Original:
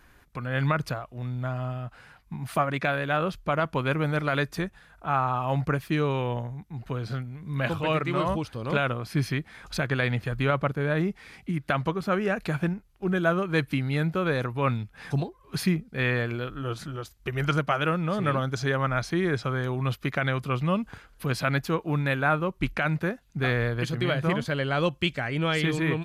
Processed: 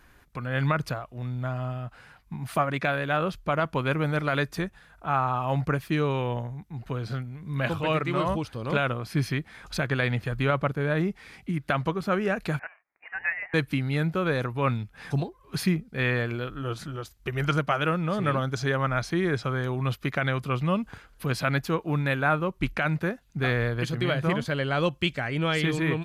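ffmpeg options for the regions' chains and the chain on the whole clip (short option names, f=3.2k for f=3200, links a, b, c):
-filter_complex "[0:a]asettb=1/sr,asplit=3[a][b][c];[a]atrim=end=12.594[d];[b]atrim=start=12.59:end=13.54,asetpts=PTS-STARTPTS,afade=t=in:d=0.004:c=qsin,afade=t=out:st=0.946:d=0.004:c=qsin,highpass=f=920:w=0.5412,highpass=f=920:w=1.3066,lowpass=f=2.7k:t=q:w=0.5098,lowpass=f=2.7k:t=q:w=0.6013,lowpass=f=2.7k:t=q:w=0.9,lowpass=f=2.7k:t=q:w=2.563,afreqshift=-3200[e];[c]atrim=start=13.536[f];[d][e]acrossfade=d=0.004:c1=hsin:c2=qsin[g];[g][f]acrossfade=d=0.004:c1=qsin:c2=hsin"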